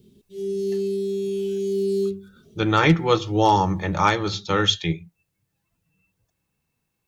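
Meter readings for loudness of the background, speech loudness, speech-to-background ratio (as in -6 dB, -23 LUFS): -26.0 LUFS, -21.0 LUFS, 5.0 dB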